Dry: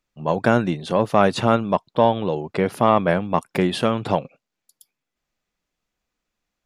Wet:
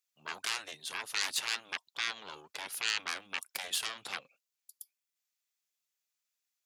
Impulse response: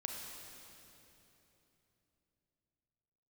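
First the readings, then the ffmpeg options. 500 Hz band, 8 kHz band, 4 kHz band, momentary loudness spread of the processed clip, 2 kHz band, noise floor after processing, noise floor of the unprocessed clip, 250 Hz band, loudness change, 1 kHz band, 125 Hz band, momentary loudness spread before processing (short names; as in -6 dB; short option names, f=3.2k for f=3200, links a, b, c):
-34.0 dB, +4.0 dB, -1.5 dB, 13 LU, -7.0 dB, under -85 dBFS, -83 dBFS, -38.0 dB, -15.0 dB, -22.5 dB, under -40 dB, 7 LU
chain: -af "aeval=exprs='0.794*(cos(1*acos(clip(val(0)/0.794,-1,1)))-cos(1*PI/2))+0.2*(cos(6*acos(clip(val(0)/0.794,-1,1)))-cos(6*PI/2))':c=same,afftfilt=real='re*lt(hypot(re,im),0.398)':imag='im*lt(hypot(re,im),0.398)':win_size=1024:overlap=0.75,aderivative"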